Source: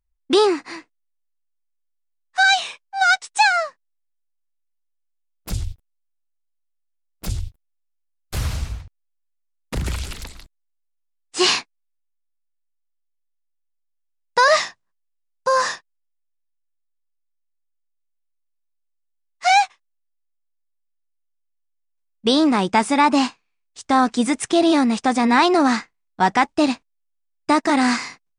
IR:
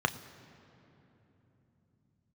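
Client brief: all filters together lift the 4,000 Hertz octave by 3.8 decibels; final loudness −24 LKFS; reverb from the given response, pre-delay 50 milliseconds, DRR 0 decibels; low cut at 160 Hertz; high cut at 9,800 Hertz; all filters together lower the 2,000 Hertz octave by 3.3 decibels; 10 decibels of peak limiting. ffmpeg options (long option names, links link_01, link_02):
-filter_complex "[0:a]highpass=160,lowpass=9800,equalizer=frequency=2000:width_type=o:gain=-6,equalizer=frequency=4000:width_type=o:gain=6,alimiter=limit=-12.5dB:level=0:latency=1,asplit=2[link_01][link_02];[1:a]atrim=start_sample=2205,adelay=50[link_03];[link_02][link_03]afir=irnorm=-1:irlink=0,volume=-9.5dB[link_04];[link_01][link_04]amix=inputs=2:normalize=0,volume=-2.5dB"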